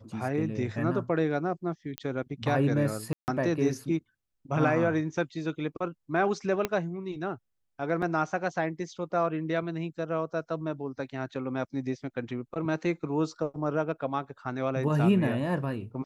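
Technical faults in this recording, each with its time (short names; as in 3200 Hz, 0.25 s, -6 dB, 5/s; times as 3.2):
1.98 pop -17 dBFS
3.13–3.28 gap 0.149 s
6.65 pop -13 dBFS
8.02 gap 3.6 ms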